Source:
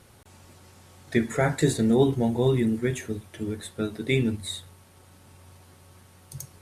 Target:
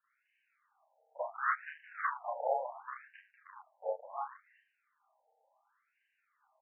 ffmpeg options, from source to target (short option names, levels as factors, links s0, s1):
-filter_complex "[0:a]afwtdn=0.0282,asettb=1/sr,asplit=3[s0][s1][s2];[s0]atrim=end=2.784[s3];[s1]atrim=start=2.78:end=3.43,asetpts=PTS-STARTPTS,afade=t=in:d=0.004:c=qsin,afade=t=out:st=0.646:d=0.004:c=qsin,aemphasis=mode=reproduction:type=bsi[s4];[s2]atrim=start=3.426[s5];[s3][s4]acrossfade=d=0.004:c1=hsin:c2=qsin[s6];[s6][s5]acrossfade=d=0.004:c1=qsin:c2=hsin,aeval=exprs='0.398*(cos(1*acos(clip(val(0)/0.398,-1,1)))-cos(1*PI/2))+0.0794*(cos(4*acos(clip(val(0)/0.398,-1,1)))-cos(4*PI/2))+0.0158*(cos(5*acos(clip(val(0)/0.398,-1,1)))-cos(5*PI/2))+0.00794*(cos(7*acos(clip(val(0)/0.398,-1,1)))-cos(7*PI/2))':c=same,aphaser=in_gain=1:out_gain=1:delay=3:decay=0.23:speed=1.3:type=triangular,acrossover=split=290|1900[s7][s8][s9];[s8]adelay=40[s10];[s7]adelay=80[s11];[s11][s10][s9]amix=inputs=3:normalize=0,aeval=exprs='clip(val(0),-1,0.0266)':c=same,asplit=2[s12][s13];[s13]adelay=31,volume=0.708[s14];[s12][s14]amix=inputs=2:normalize=0,highpass=f=170:t=q:w=0.5412,highpass=f=170:t=q:w=1.307,lowpass=f=3000:t=q:w=0.5176,lowpass=f=3000:t=q:w=0.7071,lowpass=f=3000:t=q:w=1.932,afreqshift=-100,afftfilt=real='re*between(b*sr/1024,640*pow(2200/640,0.5+0.5*sin(2*PI*0.7*pts/sr))/1.41,640*pow(2200/640,0.5+0.5*sin(2*PI*0.7*pts/sr))*1.41)':imag='im*between(b*sr/1024,640*pow(2200/640,0.5+0.5*sin(2*PI*0.7*pts/sr))/1.41,640*pow(2200/640,0.5+0.5*sin(2*PI*0.7*pts/sr))*1.41)':win_size=1024:overlap=0.75,volume=1.5"